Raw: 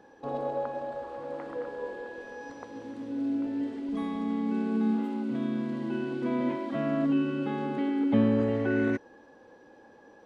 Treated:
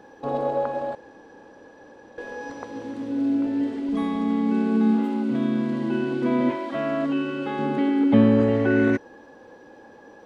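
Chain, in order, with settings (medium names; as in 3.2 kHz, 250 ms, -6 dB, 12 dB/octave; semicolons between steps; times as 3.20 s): 0.95–2.18 s: room tone; 6.50–7.59 s: peaking EQ 180 Hz -11 dB 1.5 oct; trim +7 dB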